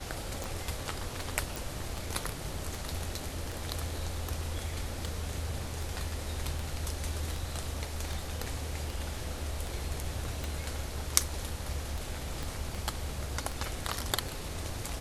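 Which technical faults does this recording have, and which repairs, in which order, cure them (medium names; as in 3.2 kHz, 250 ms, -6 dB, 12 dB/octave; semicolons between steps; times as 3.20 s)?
tick 78 rpm
1.56 s: pop
12.43 s: pop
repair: de-click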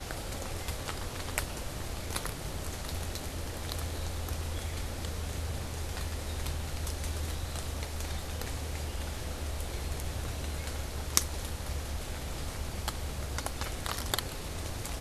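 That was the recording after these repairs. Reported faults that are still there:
12.43 s: pop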